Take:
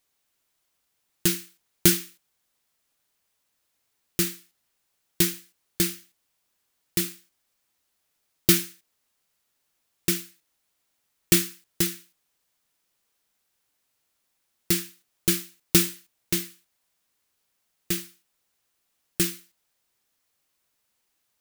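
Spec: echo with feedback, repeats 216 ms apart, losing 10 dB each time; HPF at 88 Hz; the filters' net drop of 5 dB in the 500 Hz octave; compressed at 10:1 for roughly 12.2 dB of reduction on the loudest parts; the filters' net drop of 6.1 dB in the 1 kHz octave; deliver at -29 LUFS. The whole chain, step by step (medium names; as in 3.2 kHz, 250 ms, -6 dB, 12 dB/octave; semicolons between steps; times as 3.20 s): high-pass 88 Hz; peaking EQ 500 Hz -9 dB; peaking EQ 1 kHz -7.5 dB; compression 10:1, threshold -26 dBFS; feedback delay 216 ms, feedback 32%, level -10 dB; trim +5 dB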